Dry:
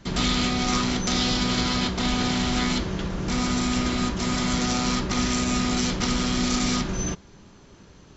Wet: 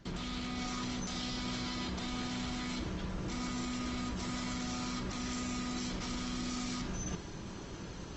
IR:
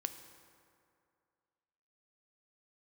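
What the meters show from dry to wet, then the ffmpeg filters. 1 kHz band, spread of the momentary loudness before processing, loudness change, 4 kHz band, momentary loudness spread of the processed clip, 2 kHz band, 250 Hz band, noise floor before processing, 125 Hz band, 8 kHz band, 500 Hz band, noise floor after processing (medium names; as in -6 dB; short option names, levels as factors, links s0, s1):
-13.5 dB, 4 LU, -14.0 dB, -14.5 dB, 3 LU, -13.5 dB, -13.0 dB, -50 dBFS, -13.0 dB, no reading, -14.0 dB, -45 dBFS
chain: -filter_complex "[0:a]alimiter=limit=0.0891:level=0:latency=1:release=19,areverse,acompressor=threshold=0.00562:ratio=4,areverse[s0];[1:a]atrim=start_sample=2205,afade=t=out:st=0.18:d=0.01,atrim=end_sample=8379[s1];[s0][s1]afir=irnorm=-1:irlink=0,volume=2.24" -ar 48000 -c:a libopus -b:a 24k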